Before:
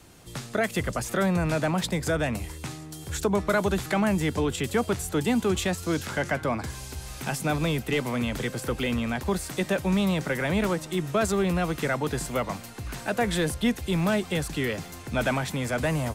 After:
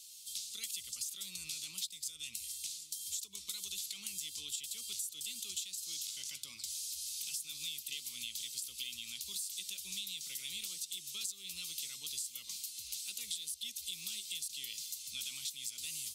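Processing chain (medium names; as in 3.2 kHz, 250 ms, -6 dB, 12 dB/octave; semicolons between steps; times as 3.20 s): inverse Chebyshev high-pass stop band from 1.8 kHz, stop band 40 dB; compression 6:1, threshold -44 dBFS, peak gain reduction 15 dB; trim +6 dB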